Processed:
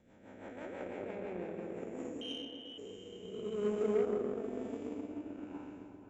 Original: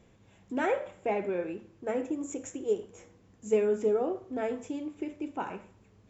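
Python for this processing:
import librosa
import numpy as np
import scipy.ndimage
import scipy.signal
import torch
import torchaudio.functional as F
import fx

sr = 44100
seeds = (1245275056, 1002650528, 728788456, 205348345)

y = fx.spec_blur(x, sr, span_ms=571.0)
y = fx.freq_invert(y, sr, carrier_hz=3400, at=(2.21, 2.78))
y = fx.rotary_switch(y, sr, hz=6.0, then_hz=1.1, switch_at_s=1.63)
y = fx.echo_opening(y, sr, ms=128, hz=200, octaves=1, feedback_pct=70, wet_db=0)
y = fx.cheby_harmonics(y, sr, harmonics=(7,), levels_db=(-25,), full_scale_db=-20.0)
y = y * 10.0 ** (-1.0 / 20.0)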